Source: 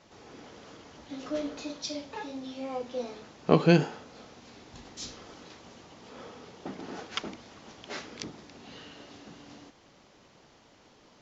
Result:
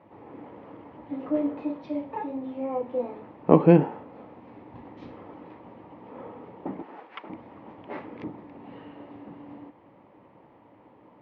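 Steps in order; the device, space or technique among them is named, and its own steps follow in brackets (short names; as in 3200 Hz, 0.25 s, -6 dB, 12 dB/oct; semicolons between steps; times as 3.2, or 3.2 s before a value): bass cabinet (speaker cabinet 75–2100 Hz, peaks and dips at 110 Hz +6 dB, 190 Hz +3 dB, 300 Hz +8 dB, 530 Hz +5 dB, 920 Hz +8 dB, 1500 Hz -8 dB); 6.82–7.3 HPF 1300 Hz 6 dB/oct; gain +1 dB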